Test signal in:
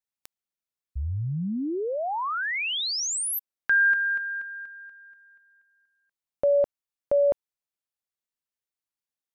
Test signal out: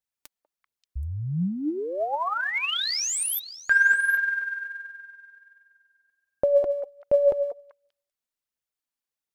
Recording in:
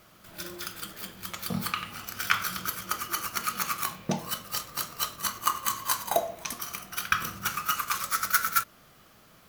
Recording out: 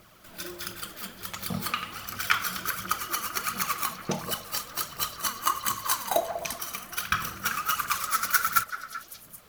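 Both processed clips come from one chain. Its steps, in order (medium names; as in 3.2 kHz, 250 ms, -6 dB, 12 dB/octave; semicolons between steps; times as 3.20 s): repeats whose band climbs or falls 194 ms, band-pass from 580 Hz, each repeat 1.4 oct, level -7 dB; phaser 1.4 Hz, delay 4.6 ms, feedback 44%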